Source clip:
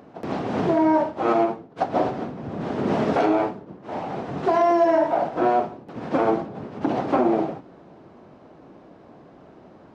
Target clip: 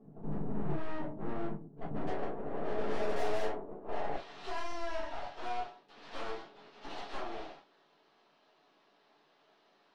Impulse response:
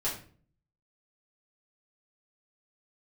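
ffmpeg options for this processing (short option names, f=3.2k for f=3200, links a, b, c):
-filter_complex "[0:a]asetnsamples=n=441:p=0,asendcmd='2.07 bandpass f 550;4.16 bandpass f 3800',bandpass=f=140:t=q:w=1.7:csg=0,aeval=exprs='(tanh(79.4*val(0)+0.6)-tanh(0.6))/79.4':c=same[a];[1:a]atrim=start_sample=2205,atrim=end_sample=3087[b];[a][b]afir=irnorm=-1:irlink=0,volume=-2.5dB"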